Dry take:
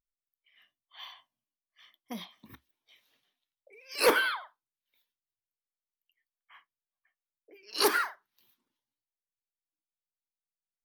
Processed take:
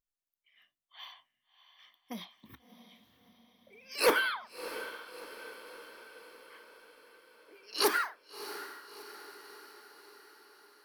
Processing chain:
feedback delay with all-pass diffusion 660 ms, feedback 58%, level −13 dB
level −2 dB

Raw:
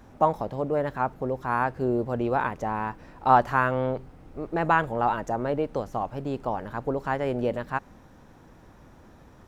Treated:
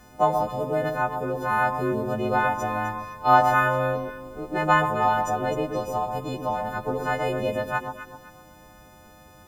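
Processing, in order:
every partial snapped to a pitch grid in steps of 3 semitones
bit reduction 11 bits
delay that swaps between a low-pass and a high-pass 128 ms, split 1,100 Hz, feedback 56%, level −5 dB

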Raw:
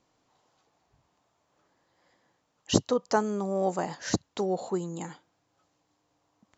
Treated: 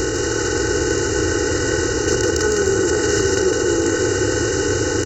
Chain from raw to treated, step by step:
compressor on every frequency bin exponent 0.2
high-shelf EQ 5,900 Hz −5 dB
comb filter 2.1 ms, depth 92%
in parallel at +1 dB: compressor whose output falls as the input rises −24 dBFS, ratio −1
on the sum: phaser with its sweep stopped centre 400 Hz, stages 4
soft clipping −5.5 dBFS, distortion −27 dB
tempo change 1.3×
phaser with its sweep stopped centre 1,400 Hz, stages 4
on a send: echo with a time of its own for lows and highs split 740 Hz, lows 547 ms, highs 157 ms, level −4 dB
on the sum: level +6.5 dB

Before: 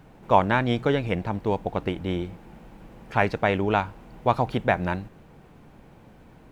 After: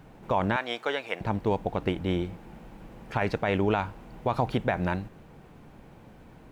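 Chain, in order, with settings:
0:00.56–0:01.21: high-pass filter 660 Hz 12 dB per octave
brickwall limiter −14.5 dBFS, peak gain reduction 10 dB

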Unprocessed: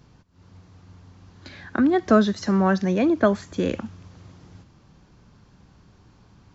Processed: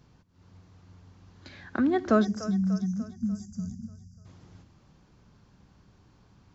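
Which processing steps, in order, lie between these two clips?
time-frequency box erased 0:02.25–0:04.26, 240–4,700 Hz
echo with a time of its own for lows and highs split 380 Hz, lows 83 ms, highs 295 ms, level −14.5 dB
level −5.5 dB

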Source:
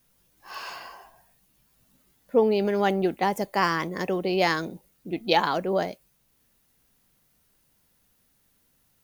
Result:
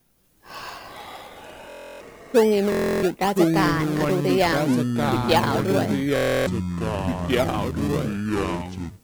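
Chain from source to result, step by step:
in parallel at −5 dB: sample-and-hold swept by an LFO 31×, swing 100% 1.1 Hz
on the sum: delay with pitch and tempo change per echo 236 ms, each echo −5 semitones, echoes 3
buffer that repeats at 0:01.68/0:02.70/0:06.14, samples 1,024, times 13

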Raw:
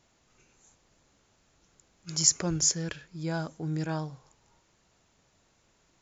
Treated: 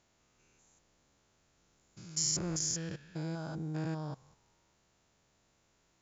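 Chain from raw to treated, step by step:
spectrum averaged block by block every 200 ms
harmonic generator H 7 −42 dB, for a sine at −15 dBFS
level −3 dB

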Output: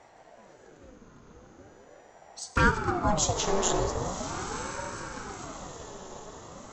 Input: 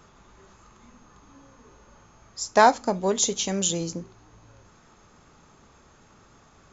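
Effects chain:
low-shelf EQ 260 Hz +7 dB
feedback delay with all-pass diffusion 1,016 ms, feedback 53%, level −10 dB
0:02.39–0:02.94: flanger swept by the level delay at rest 4.8 ms, full sweep at −11 dBFS
on a send at −7 dB: convolution reverb RT60 4.7 s, pre-delay 4 ms
on the sum: ring modulator whose carrier an LFO sweeps 470 Hz, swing 60%, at 0.41 Hz
level −1.5 dB

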